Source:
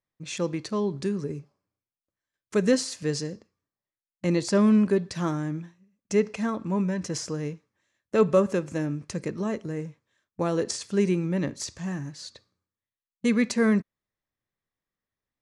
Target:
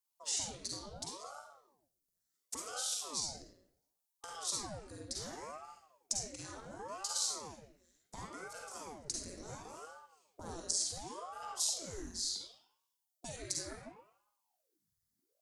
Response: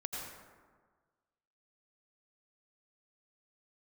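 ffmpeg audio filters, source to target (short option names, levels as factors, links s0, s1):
-filter_complex "[0:a]asubboost=boost=11.5:cutoff=66,acompressor=threshold=0.0158:ratio=6,aexciter=amount=11.4:drive=1.4:freq=4000[s0];[1:a]atrim=start_sample=2205,asetrate=88200,aresample=44100[s1];[s0][s1]afir=irnorm=-1:irlink=0,aeval=exprs='val(0)*sin(2*PI*560*n/s+560*0.85/0.7*sin(2*PI*0.7*n/s))':c=same,volume=0.891"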